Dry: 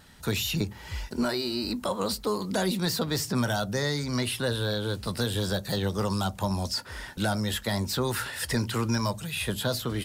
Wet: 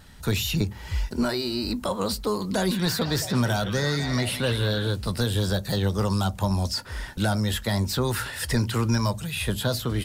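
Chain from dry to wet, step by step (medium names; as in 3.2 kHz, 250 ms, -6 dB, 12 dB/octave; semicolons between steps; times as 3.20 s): bass shelf 85 Hz +11 dB; 2.35–4.91 s: repeats whose band climbs or falls 166 ms, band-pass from 2.7 kHz, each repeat -0.7 oct, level -2 dB; trim +1.5 dB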